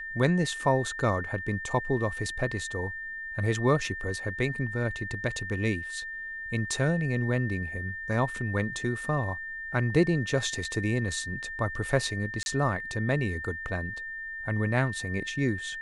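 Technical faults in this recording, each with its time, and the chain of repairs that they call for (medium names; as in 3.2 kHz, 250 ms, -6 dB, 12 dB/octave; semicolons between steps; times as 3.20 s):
whine 1.8 kHz -35 dBFS
12.43–12.46 s: dropout 31 ms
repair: band-stop 1.8 kHz, Q 30; interpolate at 12.43 s, 31 ms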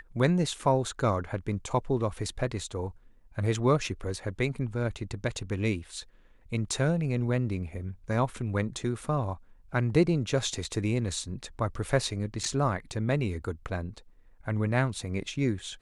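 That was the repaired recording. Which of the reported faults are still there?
nothing left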